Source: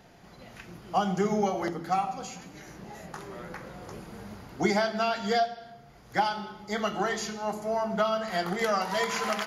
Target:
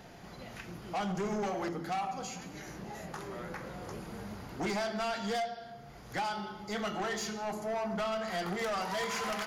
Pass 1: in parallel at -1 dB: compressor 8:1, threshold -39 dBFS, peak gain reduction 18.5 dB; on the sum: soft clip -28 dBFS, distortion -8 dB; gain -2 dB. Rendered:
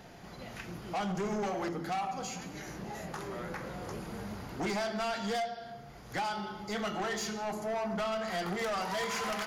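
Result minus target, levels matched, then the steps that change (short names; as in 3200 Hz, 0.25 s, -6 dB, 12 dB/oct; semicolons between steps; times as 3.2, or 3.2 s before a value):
compressor: peak gain reduction -8 dB
change: compressor 8:1, threshold -48 dBFS, peak gain reduction 26.5 dB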